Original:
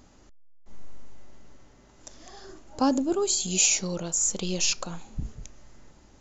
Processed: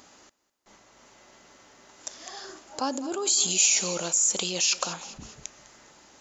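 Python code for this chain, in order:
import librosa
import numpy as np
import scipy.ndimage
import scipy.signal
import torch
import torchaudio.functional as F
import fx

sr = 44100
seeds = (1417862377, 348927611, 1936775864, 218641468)

p1 = fx.echo_feedback(x, sr, ms=203, feedback_pct=46, wet_db=-20.5)
p2 = fx.over_compress(p1, sr, threshold_db=-30.0, ratio=-0.5)
p3 = p1 + (p2 * librosa.db_to_amplitude(1.5))
y = fx.highpass(p3, sr, hz=900.0, slope=6)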